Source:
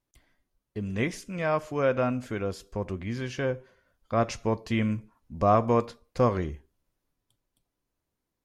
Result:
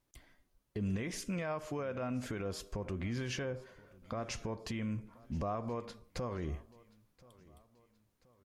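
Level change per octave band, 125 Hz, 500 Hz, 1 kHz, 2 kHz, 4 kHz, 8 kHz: -8.5, -13.0, -14.5, -9.5, -4.0, -1.5 dB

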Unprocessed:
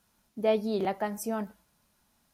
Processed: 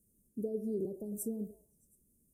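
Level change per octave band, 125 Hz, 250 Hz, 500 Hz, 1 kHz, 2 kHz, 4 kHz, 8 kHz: -4.5 dB, -5.0 dB, -9.5 dB, under -30 dB, under -40 dB, under -30 dB, -2.5 dB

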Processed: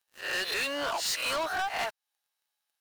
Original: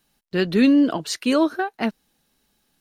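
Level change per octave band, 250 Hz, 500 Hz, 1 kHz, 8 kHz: -28.0, -11.5, -3.0, 0.0 dB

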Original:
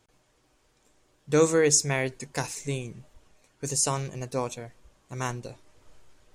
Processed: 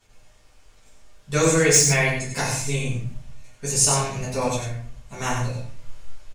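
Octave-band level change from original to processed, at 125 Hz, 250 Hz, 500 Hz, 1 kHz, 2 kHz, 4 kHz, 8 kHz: +8.0, +4.0, +2.5, +6.0, +9.0, +8.0, +7.5 dB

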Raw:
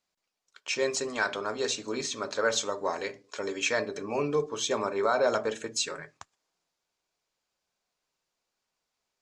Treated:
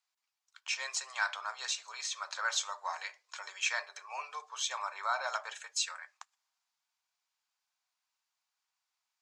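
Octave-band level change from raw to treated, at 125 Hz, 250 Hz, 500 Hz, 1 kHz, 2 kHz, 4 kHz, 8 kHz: under -40 dB, under -40 dB, -21.0 dB, -4.0 dB, -3.0 dB, -3.0 dB, -3.0 dB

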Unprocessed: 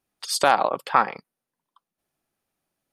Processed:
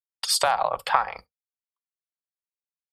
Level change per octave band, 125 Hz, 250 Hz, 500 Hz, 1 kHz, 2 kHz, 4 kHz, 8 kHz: -5.5 dB, under -10 dB, -3.5 dB, -2.5 dB, -3.0 dB, +3.0 dB, +3.0 dB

